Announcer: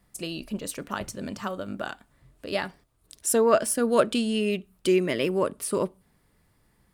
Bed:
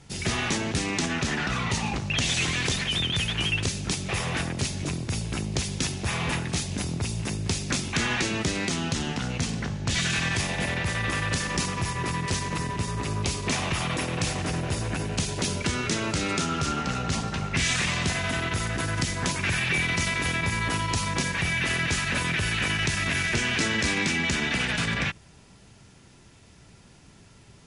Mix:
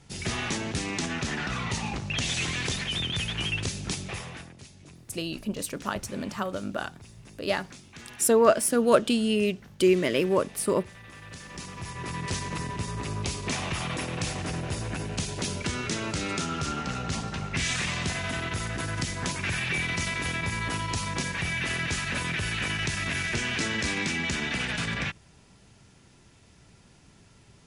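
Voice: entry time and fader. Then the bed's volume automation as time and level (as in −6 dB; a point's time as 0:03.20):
4.95 s, +1.0 dB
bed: 0:04.00 −3.5 dB
0:04.61 −20 dB
0:11.08 −20 dB
0:12.27 −3.5 dB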